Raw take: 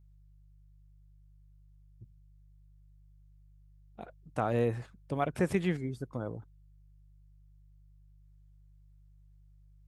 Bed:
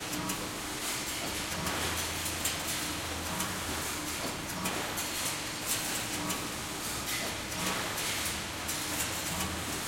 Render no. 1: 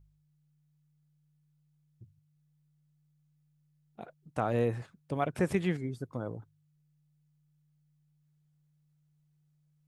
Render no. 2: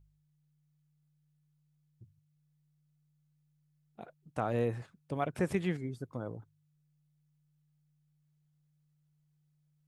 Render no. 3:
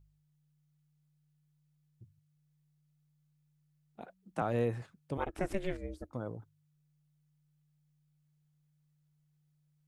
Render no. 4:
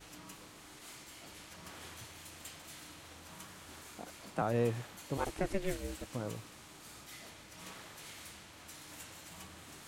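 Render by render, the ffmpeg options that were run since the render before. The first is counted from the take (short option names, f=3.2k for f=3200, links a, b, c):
-af "bandreject=f=50:t=h:w=4,bandreject=f=100:t=h:w=4"
-af "volume=-2.5dB"
-filter_complex "[0:a]asettb=1/sr,asplit=3[a][b][c];[a]atrim=end=4.014[d];[b]atrim=start=4.01:end=4.42,asetpts=PTS-STARTPTS,afade=t=in:d=0.004:c=qsin,afade=t=out:st=0.406:d=0.004:c=qsin,afreqshift=37[e];[c]atrim=start=4.416[f];[d][e]acrossfade=d=0.004:c1=hsin:c2=qsin[g];[g][f]acrossfade=d=0.004:c1=qsin:c2=hsin,asettb=1/sr,asplit=3[h][i][j];[h]atrim=end=5.174[k];[i]atrim=start=5.17:end=6.13,asetpts=PTS-STARTPTS,afade=t=in:d=0.004:c=qsin,afade=t=out:st=0.956:d=0.004:c=qsin,aeval=exprs='val(0)*sin(2*PI*190*n/s)':c=same[l];[j]atrim=start=6.126[m];[k][l]acrossfade=d=0.004:c1=hsin:c2=qsin[n];[n][m]acrossfade=d=0.004:c1=qsin:c2=hsin"
-filter_complex "[1:a]volume=-17dB[a];[0:a][a]amix=inputs=2:normalize=0"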